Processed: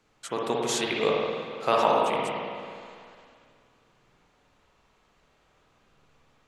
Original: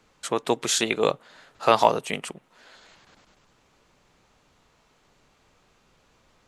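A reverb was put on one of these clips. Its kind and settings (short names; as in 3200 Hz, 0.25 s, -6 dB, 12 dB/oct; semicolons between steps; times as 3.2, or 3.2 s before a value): spring tank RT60 2.2 s, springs 48/55 ms, chirp 50 ms, DRR -3 dB; gain -6.5 dB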